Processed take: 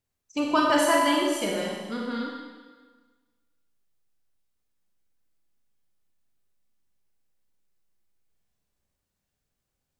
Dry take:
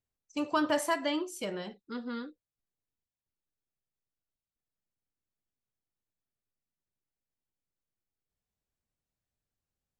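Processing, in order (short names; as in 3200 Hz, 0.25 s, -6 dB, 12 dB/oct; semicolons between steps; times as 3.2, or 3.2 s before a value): Schroeder reverb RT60 1.4 s, combs from 31 ms, DRR -1.5 dB; gain +5 dB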